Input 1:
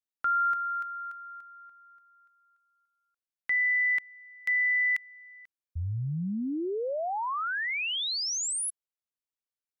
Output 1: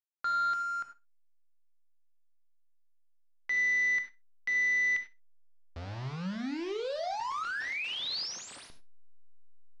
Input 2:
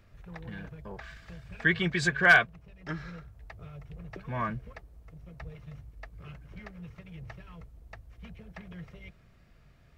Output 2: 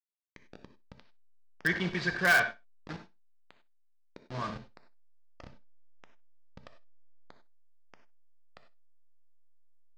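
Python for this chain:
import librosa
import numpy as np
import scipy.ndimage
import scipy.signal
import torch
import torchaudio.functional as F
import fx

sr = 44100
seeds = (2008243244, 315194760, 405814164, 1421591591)

p1 = fx.delta_hold(x, sr, step_db=-31.0)
p2 = scipy.signal.sosfilt(scipy.signal.cheby1(3, 1.0, 5000.0, 'lowpass', fs=sr, output='sos'), p1)
p3 = fx.low_shelf(p2, sr, hz=99.0, db=-9.0)
p4 = p3 + fx.echo_feedback(p3, sr, ms=61, feedback_pct=17, wet_db=-19.0, dry=0)
p5 = fx.rev_gated(p4, sr, seeds[0], gate_ms=120, shape='flat', drr_db=7.5)
p6 = (np.mod(10.0 ** (14.5 / 20.0) * p5 + 1.0, 2.0) - 1.0) / 10.0 ** (14.5 / 20.0)
p7 = p5 + (p6 * 10.0 ** (-11.0 / 20.0))
y = p7 * 10.0 ** (-5.0 / 20.0)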